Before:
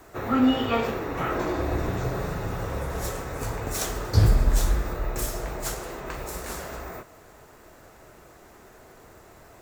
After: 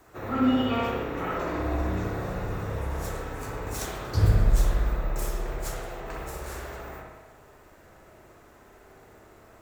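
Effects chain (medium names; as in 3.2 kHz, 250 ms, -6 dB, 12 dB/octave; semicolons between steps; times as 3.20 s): spring tank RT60 1.1 s, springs 59 ms, chirp 65 ms, DRR -2 dB; trim -6.5 dB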